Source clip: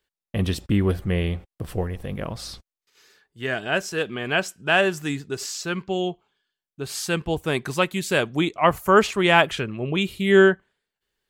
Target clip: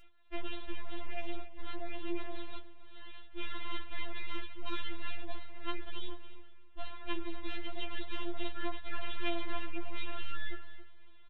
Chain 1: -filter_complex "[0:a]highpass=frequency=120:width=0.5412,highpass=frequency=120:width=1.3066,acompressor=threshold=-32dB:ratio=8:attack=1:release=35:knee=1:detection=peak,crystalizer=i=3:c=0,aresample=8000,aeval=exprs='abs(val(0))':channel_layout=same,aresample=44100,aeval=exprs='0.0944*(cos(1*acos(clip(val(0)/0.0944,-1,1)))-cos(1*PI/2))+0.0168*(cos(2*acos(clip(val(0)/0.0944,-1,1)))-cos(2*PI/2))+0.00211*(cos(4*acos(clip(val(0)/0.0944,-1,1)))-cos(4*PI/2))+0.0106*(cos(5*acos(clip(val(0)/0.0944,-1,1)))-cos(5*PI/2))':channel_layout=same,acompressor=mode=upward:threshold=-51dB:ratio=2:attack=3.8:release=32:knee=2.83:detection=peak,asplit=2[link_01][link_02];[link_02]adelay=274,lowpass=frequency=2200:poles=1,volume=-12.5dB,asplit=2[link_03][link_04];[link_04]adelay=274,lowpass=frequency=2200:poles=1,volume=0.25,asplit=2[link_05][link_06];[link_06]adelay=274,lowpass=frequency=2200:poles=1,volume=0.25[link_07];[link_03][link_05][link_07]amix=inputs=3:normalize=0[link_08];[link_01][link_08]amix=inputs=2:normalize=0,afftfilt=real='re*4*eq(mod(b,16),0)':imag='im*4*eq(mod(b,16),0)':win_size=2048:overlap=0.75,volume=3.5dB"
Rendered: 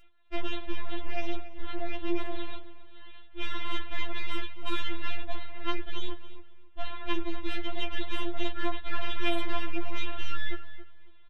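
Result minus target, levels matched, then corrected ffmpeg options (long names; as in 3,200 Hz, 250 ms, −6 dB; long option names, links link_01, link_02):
downward compressor: peak gain reduction −8.5 dB
-filter_complex "[0:a]highpass=frequency=120:width=0.5412,highpass=frequency=120:width=1.3066,acompressor=threshold=-41.5dB:ratio=8:attack=1:release=35:knee=1:detection=peak,crystalizer=i=3:c=0,aresample=8000,aeval=exprs='abs(val(0))':channel_layout=same,aresample=44100,aeval=exprs='0.0944*(cos(1*acos(clip(val(0)/0.0944,-1,1)))-cos(1*PI/2))+0.0168*(cos(2*acos(clip(val(0)/0.0944,-1,1)))-cos(2*PI/2))+0.00211*(cos(4*acos(clip(val(0)/0.0944,-1,1)))-cos(4*PI/2))+0.0106*(cos(5*acos(clip(val(0)/0.0944,-1,1)))-cos(5*PI/2))':channel_layout=same,acompressor=mode=upward:threshold=-51dB:ratio=2:attack=3.8:release=32:knee=2.83:detection=peak,asplit=2[link_01][link_02];[link_02]adelay=274,lowpass=frequency=2200:poles=1,volume=-12.5dB,asplit=2[link_03][link_04];[link_04]adelay=274,lowpass=frequency=2200:poles=1,volume=0.25,asplit=2[link_05][link_06];[link_06]adelay=274,lowpass=frequency=2200:poles=1,volume=0.25[link_07];[link_03][link_05][link_07]amix=inputs=3:normalize=0[link_08];[link_01][link_08]amix=inputs=2:normalize=0,afftfilt=real='re*4*eq(mod(b,16),0)':imag='im*4*eq(mod(b,16),0)':win_size=2048:overlap=0.75,volume=3.5dB"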